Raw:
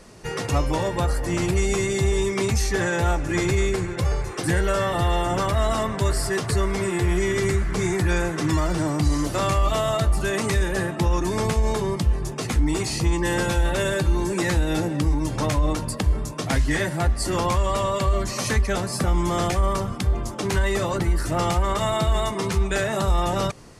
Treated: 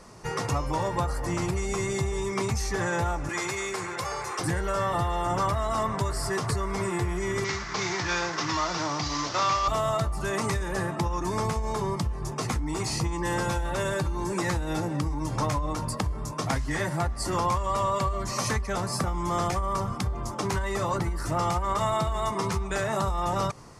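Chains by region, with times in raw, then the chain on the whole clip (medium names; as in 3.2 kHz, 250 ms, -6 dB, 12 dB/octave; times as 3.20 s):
3.29–4.40 s: high-pass 930 Hz 6 dB/octave + level flattener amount 50%
7.44–9.68 s: CVSD coder 32 kbps + tilt EQ +3.5 dB/octave + doubling 35 ms -13 dB
whole clip: high-order bell 2.6 kHz -9.5 dB; compression, threshold -22 dBFS; graphic EQ 125/1000/2000/4000 Hz +4/+6/+9/+7 dB; trim -4.5 dB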